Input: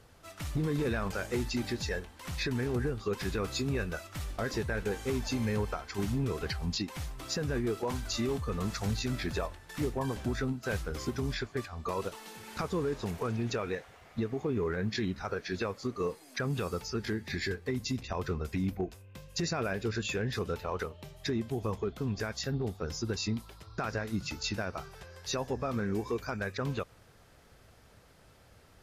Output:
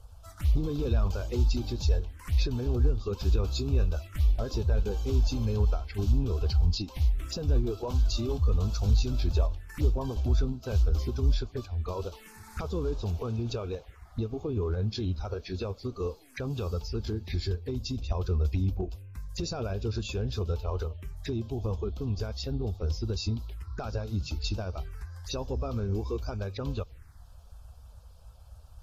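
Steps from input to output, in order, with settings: coarse spectral quantiser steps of 15 dB; touch-sensitive phaser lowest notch 300 Hz, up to 1.9 kHz, full sweep at -33 dBFS; resonant low shelf 100 Hz +13 dB, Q 1.5; trim +1 dB

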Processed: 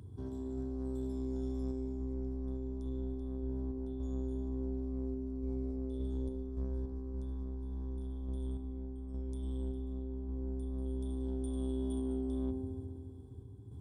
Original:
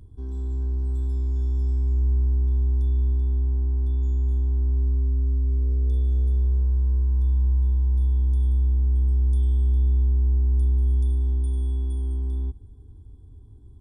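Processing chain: high-pass 89 Hz 24 dB/octave; peak limiter -31.5 dBFS, peak gain reduction 7 dB; saturation -36.5 dBFS, distortion -16 dB; random-step tremolo; feedback echo behind a low-pass 69 ms, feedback 81%, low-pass 660 Hz, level -7 dB; trim +5 dB

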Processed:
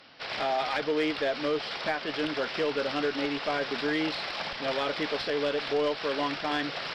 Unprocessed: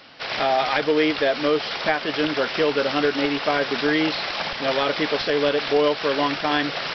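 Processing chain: Chebyshev shaper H 6 -31 dB, 8 -29 dB, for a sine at -6.5 dBFS; saturation -11 dBFS, distortion -21 dB; trim -7 dB

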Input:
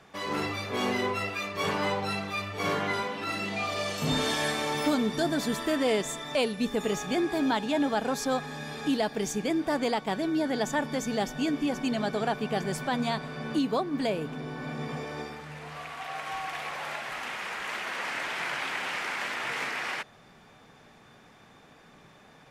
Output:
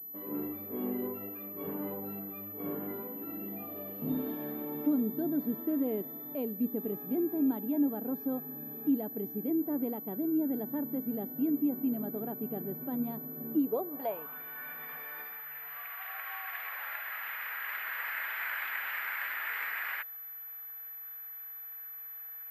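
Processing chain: band-pass sweep 280 Hz -> 1.7 kHz, 13.55–14.46 s; class-D stage that switches slowly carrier 12 kHz

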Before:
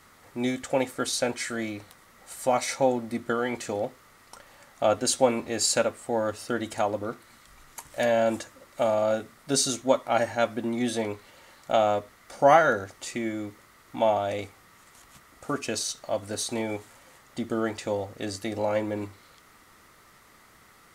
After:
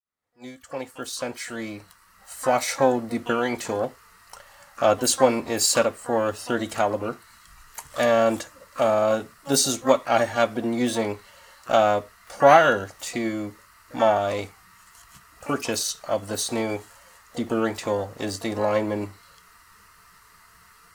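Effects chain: fade-in on the opening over 2.80 s; spectral noise reduction 14 dB; harmony voices +12 st -13 dB; trim +3.5 dB

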